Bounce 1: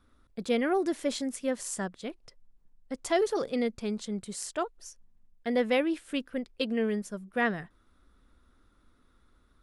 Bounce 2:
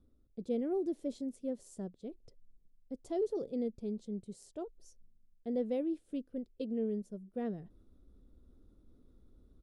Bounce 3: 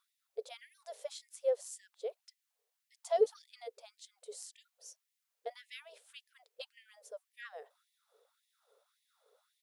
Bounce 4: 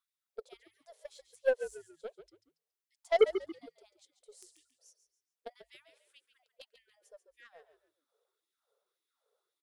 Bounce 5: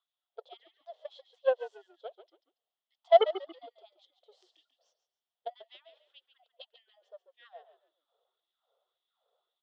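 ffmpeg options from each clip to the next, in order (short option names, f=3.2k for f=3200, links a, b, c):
-af "firequalizer=gain_entry='entry(430,0);entry(1000,-18);entry(1700,-24);entry(3700,-15)':delay=0.05:min_phase=1,areverse,acompressor=mode=upward:threshold=-44dB:ratio=2.5,areverse,volume=-5.5dB"
-af "afftfilt=real='re*gte(b*sr/1024,390*pow(1800/390,0.5+0.5*sin(2*PI*1.8*pts/sr)))':imag='im*gte(b*sr/1024,390*pow(1800/390,0.5+0.5*sin(2*PI*1.8*pts/sr)))':win_size=1024:overlap=0.75,volume=10dB"
-filter_complex "[0:a]aeval=exprs='0.15*(cos(1*acos(clip(val(0)/0.15,-1,1)))-cos(1*PI/2))+0.00266*(cos(5*acos(clip(val(0)/0.15,-1,1)))-cos(5*PI/2))+0.0188*(cos(7*acos(clip(val(0)/0.15,-1,1)))-cos(7*PI/2))+0.000944*(cos(8*acos(clip(val(0)/0.15,-1,1)))-cos(8*PI/2))':c=same,asplit=4[a][b][c][d];[b]adelay=140,afreqshift=-54,volume=-11dB[e];[c]adelay=280,afreqshift=-108,volume=-21.2dB[f];[d]adelay=420,afreqshift=-162,volume=-31.3dB[g];[a][e][f][g]amix=inputs=4:normalize=0,volume=3.5dB"
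-af "aeval=exprs='if(lt(val(0),0),0.708*val(0),val(0))':c=same,highpass=f=410:w=0.5412,highpass=f=410:w=1.3066,equalizer=f=430:t=q:w=4:g=-6,equalizer=f=710:t=q:w=4:g=9,equalizer=f=1.6k:t=q:w=4:g=-6,equalizer=f=2.3k:t=q:w=4:g=-10,equalizer=f=3.3k:t=q:w=4:g=9,lowpass=f=3.7k:w=0.5412,lowpass=f=3.7k:w=1.3066,volume=4dB"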